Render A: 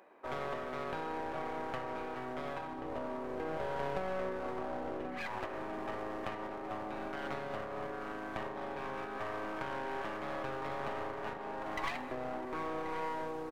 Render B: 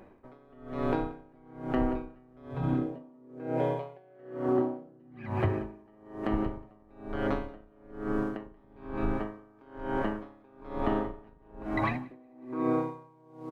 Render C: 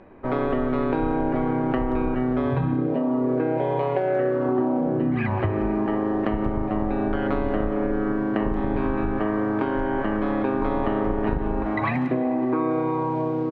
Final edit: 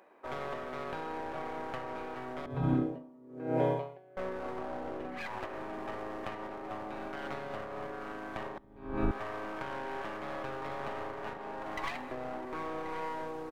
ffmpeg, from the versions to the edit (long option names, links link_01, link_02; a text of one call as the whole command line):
ffmpeg -i take0.wav -i take1.wav -filter_complex "[1:a]asplit=2[link_01][link_02];[0:a]asplit=3[link_03][link_04][link_05];[link_03]atrim=end=2.462[link_06];[link_01]atrim=start=2.458:end=4.172[link_07];[link_04]atrim=start=4.168:end=8.582[link_08];[link_02]atrim=start=8.578:end=9.112[link_09];[link_05]atrim=start=9.108[link_10];[link_06][link_07]acrossfade=duration=0.004:curve1=hsin:curve2=hsin[link_11];[link_11][link_08]acrossfade=duration=0.004:curve1=hsin:curve2=hsin[link_12];[link_12][link_09]acrossfade=duration=0.004:curve1=hsin:curve2=hsin[link_13];[link_13][link_10]acrossfade=duration=0.004:curve1=hsin:curve2=hsin" out.wav